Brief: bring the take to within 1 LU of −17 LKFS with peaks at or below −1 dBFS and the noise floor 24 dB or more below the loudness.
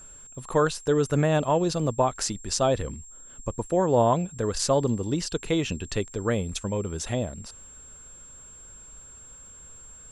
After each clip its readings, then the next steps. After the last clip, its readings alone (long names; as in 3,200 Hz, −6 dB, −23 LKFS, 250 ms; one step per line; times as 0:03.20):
crackle rate 31 per second; interfering tone 7,500 Hz; level of the tone −45 dBFS; integrated loudness −26.0 LKFS; sample peak −8.5 dBFS; target loudness −17.0 LKFS
→ click removal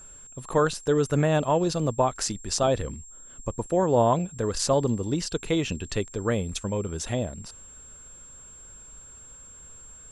crackle rate 0 per second; interfering tone 7,500 Hz; level of the tone −45 dBFS
→ notch filter 7,500 Hz, Q 30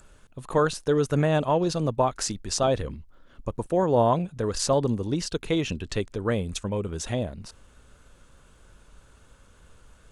interfering tone none found; integrated loudness −26.0 LKFS; sample peak −8.5 dBFS; target loudness −17.0 LKFS
→ level +9 dB
brickwall limiter −1 dBFS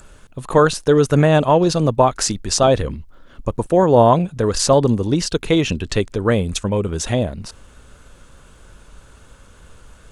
integrated loudness −17.0 LKFS; sample peak −1.0 dBFS; background noise floor −47 dBFS